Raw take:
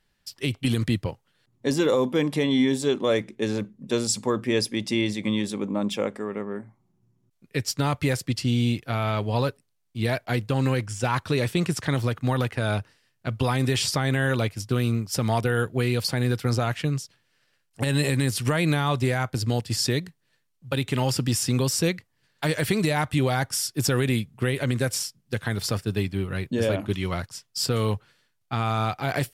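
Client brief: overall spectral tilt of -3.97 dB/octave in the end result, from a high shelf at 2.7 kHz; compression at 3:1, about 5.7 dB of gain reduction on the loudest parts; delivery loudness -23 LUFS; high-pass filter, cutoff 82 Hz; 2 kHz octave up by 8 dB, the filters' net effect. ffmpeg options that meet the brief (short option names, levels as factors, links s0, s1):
-af "highpass=82,equalizer=f=2000:t=o:g=8.5,highshelf=f=2700:g=3.5,acompressor=threshold=0.0631:ratio=3,volume=1.78"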